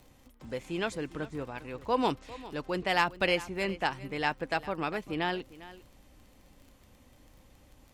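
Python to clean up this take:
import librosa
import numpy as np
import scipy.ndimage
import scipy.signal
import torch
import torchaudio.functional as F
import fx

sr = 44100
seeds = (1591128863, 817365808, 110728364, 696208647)

y = fx.fix_declick_ar(x, sr, threshold=6.5)
y = fx.fix_echo_inverse(y, sr, delay_ms=402, level_db=-17.5)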